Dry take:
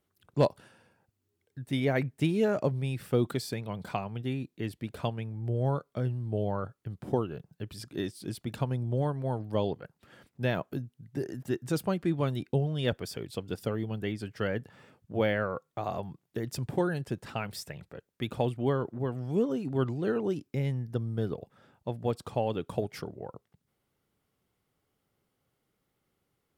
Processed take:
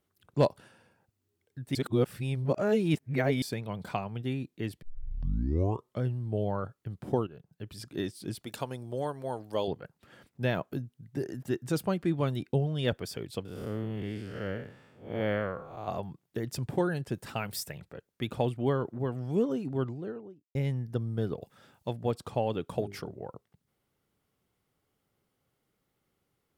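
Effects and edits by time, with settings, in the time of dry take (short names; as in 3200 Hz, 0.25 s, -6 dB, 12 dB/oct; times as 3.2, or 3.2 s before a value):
1.75–3.42 reverse
4.82 tape start 1.18 s
7.27–7.87 fade in, from -12 dB
8.44–9.68 tone controls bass -12 dB, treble +8 dB
13.45–15.88 time blur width 0.197 s
17.14–17.79 high shelf 8300 Hz +11.5 dB
19.44–20.55 studio fade out
21.42–21.93 high shelf 2700 Hz +11 dB
22.65–23.12 notches 50/100/150/200/250/300/350/400 Hz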